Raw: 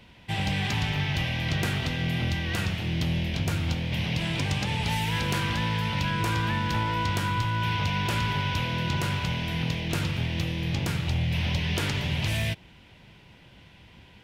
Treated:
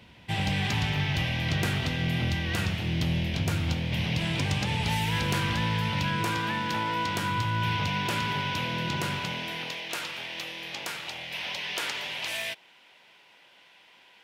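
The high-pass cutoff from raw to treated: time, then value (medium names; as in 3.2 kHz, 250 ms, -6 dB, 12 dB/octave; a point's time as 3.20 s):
5.78 s 55 Hz
6.44 s 200 Hz
7.06 s 200 Hz
7.61 s 70 Hz
8.03 s 160 Hz
9.13 s 160 Hz
9.82 s 620 Hz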